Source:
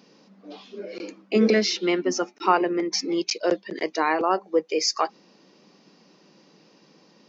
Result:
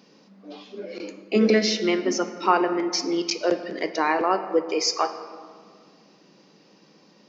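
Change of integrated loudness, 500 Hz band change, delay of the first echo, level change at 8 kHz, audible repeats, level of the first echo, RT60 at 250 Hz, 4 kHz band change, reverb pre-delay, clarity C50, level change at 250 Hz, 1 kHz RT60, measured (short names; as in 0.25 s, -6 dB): +0.5 dB, +0.5 dB, none, n/a, none, none, 2.3 s, +0.5 dB, 5 ms, 10.5 dB, +0.5 dB, 1.8 s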